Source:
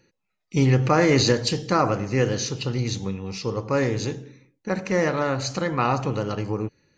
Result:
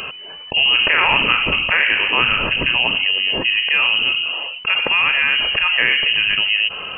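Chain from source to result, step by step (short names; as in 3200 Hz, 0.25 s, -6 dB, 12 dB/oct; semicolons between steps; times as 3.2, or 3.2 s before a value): 0.74–3.05 spectral limiter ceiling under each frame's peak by 14 dB; inverted band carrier 3000 Hz; fast leveller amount 70%; gain +1.5 dB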